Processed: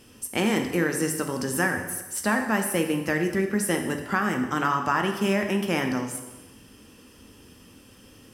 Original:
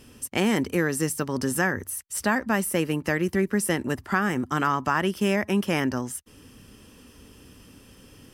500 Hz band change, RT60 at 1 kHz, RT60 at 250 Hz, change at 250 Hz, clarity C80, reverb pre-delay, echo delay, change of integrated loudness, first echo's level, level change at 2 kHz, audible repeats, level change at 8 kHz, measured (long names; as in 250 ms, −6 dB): 0.0 dB, 1.1 s, 1.2 s, −0.5 dB, 9.0 dB, 4 ms, no echo audible, 0.0 dB, no echo audible, +0.5 dB, no echo audible, +0.5 dB